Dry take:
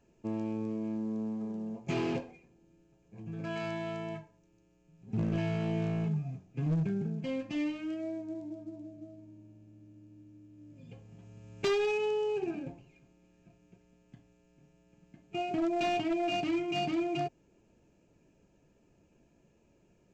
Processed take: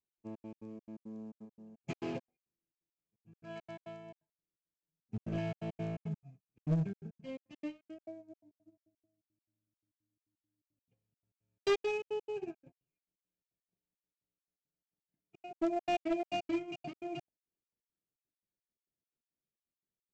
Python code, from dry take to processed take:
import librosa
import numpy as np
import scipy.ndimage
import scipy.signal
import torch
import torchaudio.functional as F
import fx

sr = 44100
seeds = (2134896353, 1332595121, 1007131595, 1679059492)

y = fx.dynamic_eq(x, sr, hz=620.0, q=6.3, threshold_db=-54.0, ratio=4.0, max_db=7)
y = fx.step_gate(y, sr, bpm=171, pattern='x.xx.x.xx.x.xxx.', floor_db=-60.0, edge_ms=4.5)
y = fx.upward_expand(y, sr, threshold_db=-50.0, expansion=2.5)
y = y * librosa.db_to_amplitude(1.0)